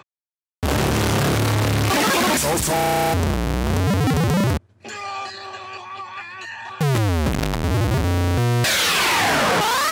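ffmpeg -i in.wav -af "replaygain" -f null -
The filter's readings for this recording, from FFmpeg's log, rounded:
track_gain = +1.1 dB
track_peak = 0.236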